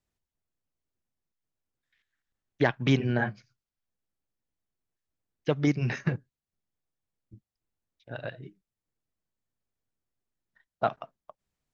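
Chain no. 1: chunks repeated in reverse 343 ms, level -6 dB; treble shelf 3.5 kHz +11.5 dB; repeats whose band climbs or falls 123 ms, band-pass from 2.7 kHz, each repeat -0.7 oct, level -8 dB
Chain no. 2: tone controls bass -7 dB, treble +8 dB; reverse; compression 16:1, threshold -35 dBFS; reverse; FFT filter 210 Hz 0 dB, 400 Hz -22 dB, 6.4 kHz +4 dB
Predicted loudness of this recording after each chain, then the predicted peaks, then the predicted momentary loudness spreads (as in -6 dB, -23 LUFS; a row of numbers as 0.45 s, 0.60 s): -29.0 LUFS, -47.0 LUFS; -7.5 dBFS, -28.0 dBFS; 22 LU, 22 LU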